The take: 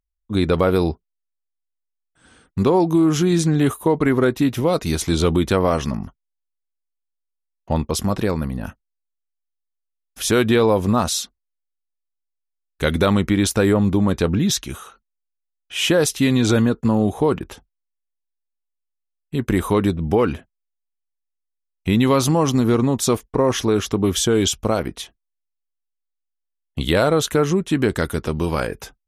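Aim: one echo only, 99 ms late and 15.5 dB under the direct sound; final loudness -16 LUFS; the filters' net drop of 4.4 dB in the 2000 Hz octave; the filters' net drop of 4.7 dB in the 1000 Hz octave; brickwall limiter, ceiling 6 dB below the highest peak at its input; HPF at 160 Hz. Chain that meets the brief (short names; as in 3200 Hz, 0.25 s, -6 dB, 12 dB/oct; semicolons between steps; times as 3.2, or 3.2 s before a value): HPF 160 Hz; bell 1000 Hz -5 dB; bell 2000 Hz -4 dB; limiter -10.5 dBFS; echo 99 ms -15.5 dB; gain +6 dB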